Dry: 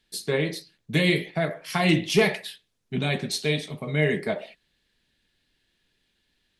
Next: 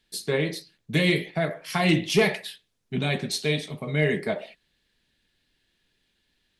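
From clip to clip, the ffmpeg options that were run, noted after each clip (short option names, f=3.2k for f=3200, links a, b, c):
-af "acontrast=25,volume=-5dB"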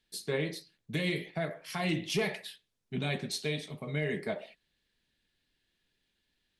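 -af "alimiter=limit=-14.5dB:level=0:latency=1:release=141,volume=-7dB"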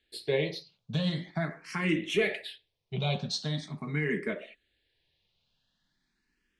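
-filter_complex "[0:a]lowpass=6k,asplit=2[a][b];[b]afreqshift=0.43[c];[a][c]amix=inputs=2:normalize=1,volume=5.5dB"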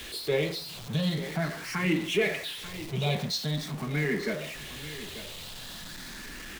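-af "aeval=exprs='val(0)+0.5*0.0168*sgn(val(0))':c=same,aecho=1:1:890:0.2"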